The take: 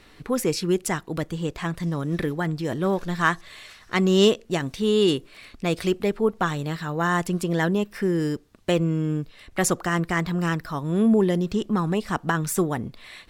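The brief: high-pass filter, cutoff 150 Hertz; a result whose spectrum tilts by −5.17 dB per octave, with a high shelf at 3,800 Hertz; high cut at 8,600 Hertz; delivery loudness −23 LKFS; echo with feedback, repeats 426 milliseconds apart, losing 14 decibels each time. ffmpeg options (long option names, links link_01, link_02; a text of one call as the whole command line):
ffmpeg -i in.wav -af "highpass=150,lowpass=8600,highshelf=frequency=3800:gain=-5,aecho=1:1:426|852:0.2|0.0399,volume=2dB" out.wav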